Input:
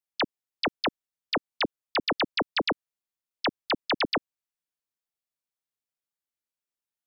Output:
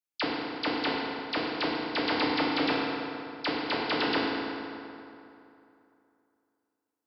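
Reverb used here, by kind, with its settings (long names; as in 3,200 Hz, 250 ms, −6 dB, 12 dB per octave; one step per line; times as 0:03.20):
feedback delay network reverb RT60 2.8 s, high-frequency decay 0.65×, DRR −5.5 dB
level −6.5 dB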